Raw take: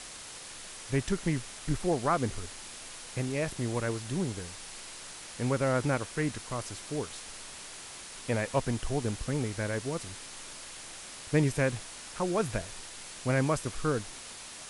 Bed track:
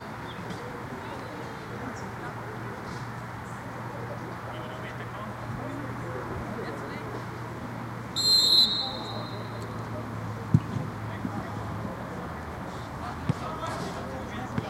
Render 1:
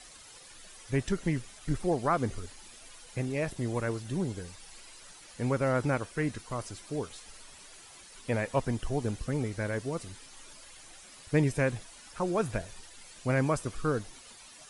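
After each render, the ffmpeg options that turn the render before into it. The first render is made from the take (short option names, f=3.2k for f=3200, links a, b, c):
-af "afftdn=nr=11:nf=-45"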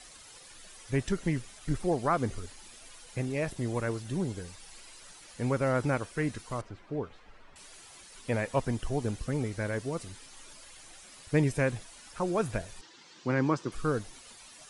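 -filter_complex "[0:a]asettb=1/sr,asplit=3[a][b][c];[a]atrim=end=6.614[d];[b]atrim=start=6.61:end=7.56,asetpts=PTS-STARTPTS,afade=t=in:d=0.004:c=qsin,afade=t=out:st=0.946:d=0.004:c=qsin,lowpass=1.9k[e];[c]atrim=start=7.556[f];[d][e]acrossfade=d=0.004:c1=hsin:c2=qsin[g];[g][f]acrossfade=d=0.004:c1=qsin:c2=hsin,asettb=1/sr,asplit=3[h][i][j];[h]atrim=end=12.814[k];[i]atrim=start=12.81:end=13.72,asetpts=PTS-STARTPTS,afade=t=in:d=0.004:c=qsin,afade=t=out:st=0.906:d=0.004:c=qsin,highpass=f=130:w=0.5412,highpass=f=130:w=1.3066,equalizer=f=330:t=q:w=4:g=8,equalizer=f=640:t=q:w=4:g=-8,equalizer=f=960:t=q:w=4:g=3,equalizer=f=2.4k:t=q:w=4:g=-4,lowpass=f=5.9k:w=0.5412,lowpass=f=5.9k:w=1.3066[l];[j]atrim=start=13.716[m];[k][l]acrossfade=d=0.004:c1=hsin:c2=qsin[n];[n][m]acrossfade=d=0.004:c1=qsin:c2=hsin"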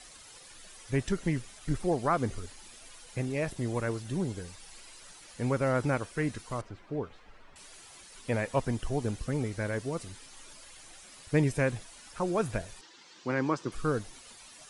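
-filter_complex "[0:a]asettb=1/sr,asplit=3[a][b][c];[a]atrim=end=12.754[d];[b]atrim=start=12.75:end=13.61,asetpts=PTS-STARTPTS,afade=t=in:d=0.004:c=qsin,afade=t=out:st=0.856:d=0.004:c=qsin,lowshelf=f=160:g=-9.5[e];[c]atrim=start=13.606[f];[d][e]acrossfade=d=0.004:c1=hsin:c2=qsin[g];[g][f]acrossfade=d=0.004:c1=qsin:c2=hsin"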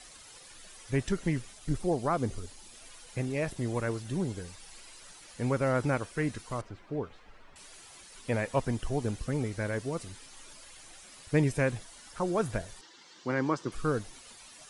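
-filter_complex "[0:a]asettb=1/sr,asplit=3[a][b][c];[a]atrim=end=1.534[d];[b]atrim=start=1.53:end=2.75,asetpts=PTS-STARTPTS,afade=t=in:d=0.004:c=qsin,afade=t=out:st=1.216:d=0.004:c=qsin,equalizer=f=1.7k:t=o:w=1.4:g=-5[e];[c]atrim=start=2.746[f];[d][e]acrossfade=d=0.004:c1=hsin:c2=qsin[g];[g][f]acrossfade=d=0.004:c1=qsin:c2=hsin,asettb=1/sr,asplit=3[h][i][j];[h]atrim=end=11.794[k];[i]atrim=start=11.79:end=13.67,asetpts=PTS-STARTPTS,afade=t=in:d=0.004:c=qsin,afade=t=out:st=1.876:d=0.004:c=qsin,bandreject=f=2.5k:w=12[l];[j]atrim=start=13.666[m];[k][l]acrossfade=d=0.004:c1=hsin:c2=qsin[n];[n][m]acrossfade=d=0.004:c1=qsin:c2=hsin"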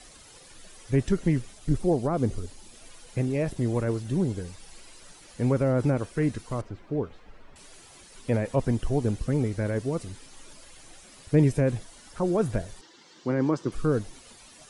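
-filter_complex "[0:a]acrossover=split=600[a][b];[a]acontrast=62[c];[b]alimiter=level_in=4dB:limit=-24dB:level=0:latency=1:release=20,volume=-4dB[d];[c][d]amix=inputs=2:normalize=0"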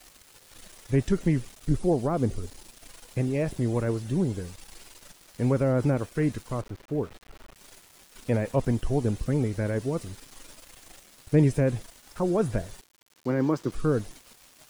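-af "aeval=exprs='val(0)*gte(abs(val(0)),0.00501)':c=same"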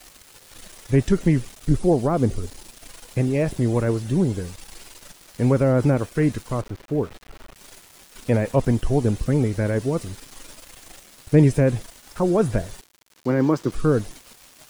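-af "volume=5.5dB"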